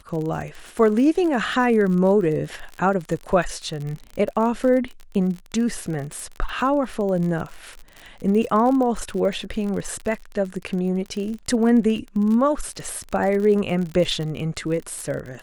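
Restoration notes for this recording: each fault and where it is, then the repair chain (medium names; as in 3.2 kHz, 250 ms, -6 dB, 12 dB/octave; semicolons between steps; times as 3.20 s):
crackle 41 per s -28 dBFS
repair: de-click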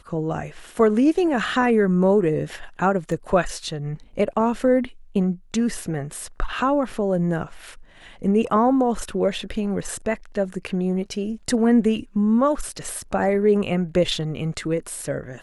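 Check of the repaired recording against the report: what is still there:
nothing left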